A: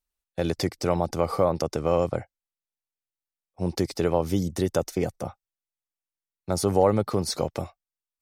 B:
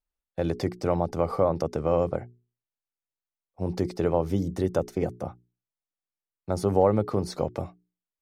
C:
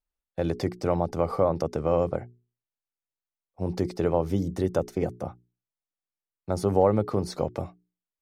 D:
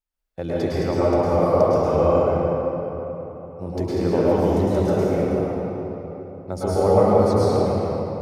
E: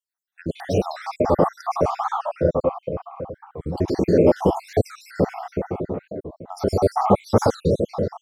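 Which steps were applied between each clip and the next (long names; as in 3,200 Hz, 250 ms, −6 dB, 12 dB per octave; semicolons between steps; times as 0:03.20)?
high-shelf EQ 2,400 Hz −12 dB; mains-hum notches 60/120/180/240/300/360/420 Hz
no processing that can be heard
convolution reverb RT60 3.7 s, pre-delay 101 ms, DRR −10 dB; level −2.5 dB
time-frequency cells dropped at random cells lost 67%; wow of a warped record 45 rpm, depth 250 cents; level +4.5 dB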